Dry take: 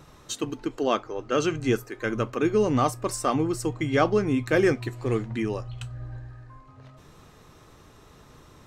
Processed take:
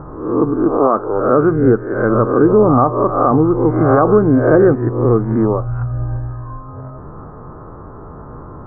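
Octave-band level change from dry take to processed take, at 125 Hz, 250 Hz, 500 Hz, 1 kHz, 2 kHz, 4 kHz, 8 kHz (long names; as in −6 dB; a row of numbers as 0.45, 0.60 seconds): +13.5 dB, +13.0 dB, +13.0 dB, +12.5 dB, +4.5 dB, below −35 dB, below −40 dB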